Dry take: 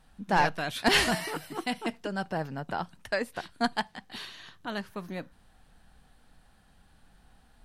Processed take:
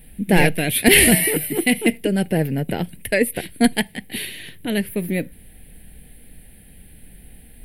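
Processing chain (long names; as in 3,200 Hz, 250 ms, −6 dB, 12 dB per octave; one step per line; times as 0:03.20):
drawn EQ curve 470 Hz 0 dB, 1,200 Hz −26 dB, 2,100 Hz +3 dB, 6,400 Hz −17 dB, 10,000 Hz +12 dB
boost into a limiter +16.5 dB
level −1 dB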